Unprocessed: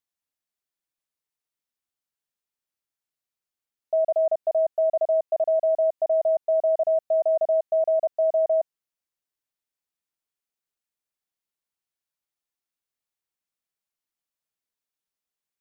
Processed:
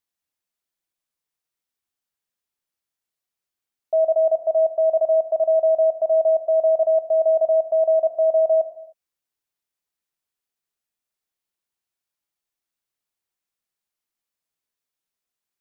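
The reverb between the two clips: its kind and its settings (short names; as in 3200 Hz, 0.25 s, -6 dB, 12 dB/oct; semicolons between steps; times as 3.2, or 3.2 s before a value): non-linear reverb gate 0.33 s falling, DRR 8 dB; gain +2 dB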